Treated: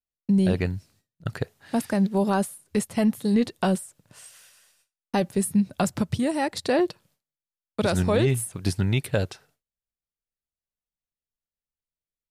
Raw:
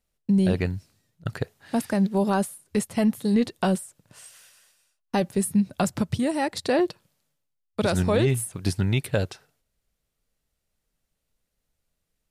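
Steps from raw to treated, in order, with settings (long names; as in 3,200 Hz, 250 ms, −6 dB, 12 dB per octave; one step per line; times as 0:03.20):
noise gate with hold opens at −53 dBFS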